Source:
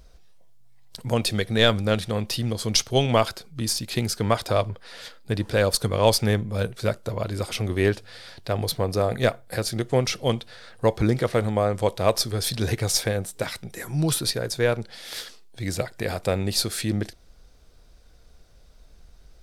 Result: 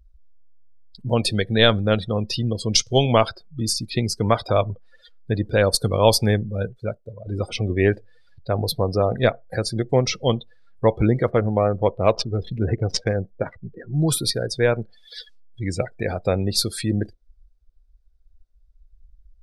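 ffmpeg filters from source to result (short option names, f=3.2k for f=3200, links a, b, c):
-filter_complex "[0:a]asplit=3[a][b][c];[a]afade=t=out:st=11.29:d=0.02[d];[b]adynamicsmooth=sensitivity=2.5:basefreq=730,afade=t=in:st=11.29:d=0.02,afade=t=out:st=13.93:d=0.02[e];[c]afade=t=in:st=13.93:d=0.02[f];[d][e][f]amix=inputs=3:normalize=0,asplit=2[g][h];[g]atrim=end=7.26,asetpts=PTS-STARTPTS,afade=t=out:st=6.28:d=0.98:silence=0.199526[i];[h]atrim=start=7.26,asetpts=PTS-STARTPTS,afade=t=in:d=0.004:c=hsin:silence=0.199526[j];[i][j]concat=n=2:v=0:a=1,afftdn=nr=31:nf=-32,volume=3dB"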